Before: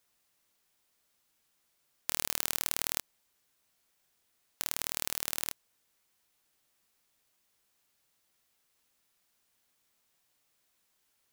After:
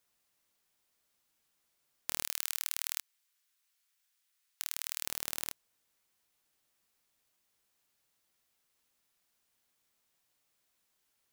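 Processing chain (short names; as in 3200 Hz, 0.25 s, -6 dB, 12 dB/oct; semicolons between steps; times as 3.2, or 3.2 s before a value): 2.23–5.06 HPF 1400 Hz 12 dB/oct; gain -3 dB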